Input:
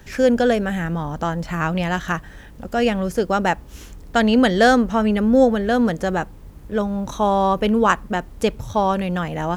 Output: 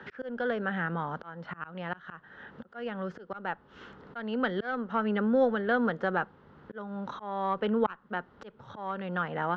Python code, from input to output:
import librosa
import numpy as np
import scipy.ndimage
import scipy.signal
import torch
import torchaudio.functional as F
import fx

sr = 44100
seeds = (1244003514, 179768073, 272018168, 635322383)

y = fx.cabinet(x, sr, low_hz=230.0, low_slope=12, high_hz=3200.0, hz=(300.0, 650.0, 1400.0, 2400.0), db=(-8, -5, 8, -10))
y = fx.cheby_harmonics(y, sr, harmonics=(2,), levels_db=(-16,), full_scale_db=0.0)
y = fx.auto_swell(y, sr, attack_ms=578.0)
y = fx.band_squash(y, sr, depth_pct=40)
y = y * 10.0 ** (-5.0 / 20.0)